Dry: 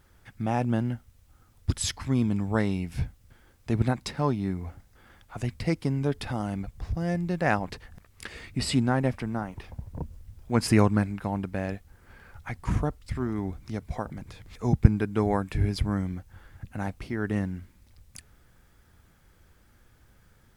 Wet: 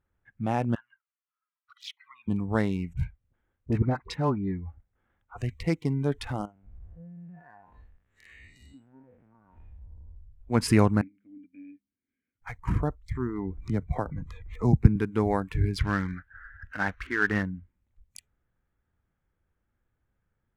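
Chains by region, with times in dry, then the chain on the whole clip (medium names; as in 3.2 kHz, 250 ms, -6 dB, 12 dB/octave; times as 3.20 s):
0.75–2.28 s: elliptic band-pass 1.1–5.5 kHz + distance through air 130 m + touch-sensitive flanger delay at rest 3.2 ms, full sweep at -35.5 dBFS
2.93–4.66 s: low-pass that closes with the level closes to 1.8 kHz, closed at -20 dBFS + phase dispersion highs, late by 44 ms, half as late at 950 Hz
6.45–10.40 s: spectral blur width 230 ms + compression 10:1, threshold -39 dBFS
11.01–12.42 s: vowel filter i + de-hum 67.92 Hz, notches 5
13.57–14.96 s: bass shelf 330 Hz +4 dB + three bands compressed up and down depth 40%
15.79–17.43 s: CVSD coder 32 kbps + peaking EQ 1.6 kHz +14.5 dB 1 oct + hard clipper -12 dBFS
whole clip: local Wiener filter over 9 samples; spectral noise reduction 18 dB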